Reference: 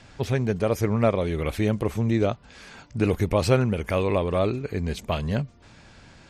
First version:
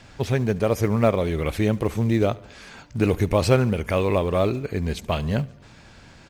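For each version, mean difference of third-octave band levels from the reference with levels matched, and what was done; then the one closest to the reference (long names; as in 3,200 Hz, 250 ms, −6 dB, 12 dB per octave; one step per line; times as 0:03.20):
1.5 dB: in parallel at −12 dB: floating-point word with a short mantissa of 2 bits
on the sum: repeating echo 72 ms, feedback 60%, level −23 dB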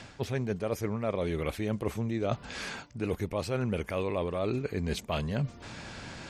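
5.0 dB: low-shelf EQ 69 Hz −9 dB
reversed playback
downward compressor 10 to 1, threshold −36 dBFS, peak gain reduction 21.5 dB
reversed playback
level +8 dB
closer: first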